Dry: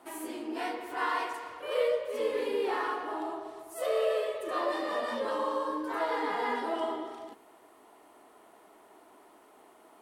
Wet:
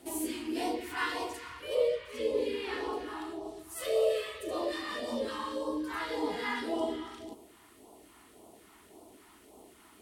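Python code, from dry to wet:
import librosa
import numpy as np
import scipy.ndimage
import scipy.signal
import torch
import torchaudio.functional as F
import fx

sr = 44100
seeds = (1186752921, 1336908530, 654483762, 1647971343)

p1 = fx.peak_eq(x, sr, hz=64.0, db=12.5, octaves=1.4)
p2 = fx.rider(p1, sr, range_db=4, speed_s=2.0)
p3 = fx.high_shelf(p2, sr, hz=8500.0, db=-10.0, at=(1.75, 2.93))
p4 = p3 + fx.echo_single(p3, sr, ms=392, db=-23.0, dry=0)
p5 = fx.phaser_stages(p4, sr, stages=2, low_hz=530.0, high_hz=1600.0, hz=1.8, feedback_pct=25)
y = F.gain(torch.from_numpy(p5), 3.5).numpy()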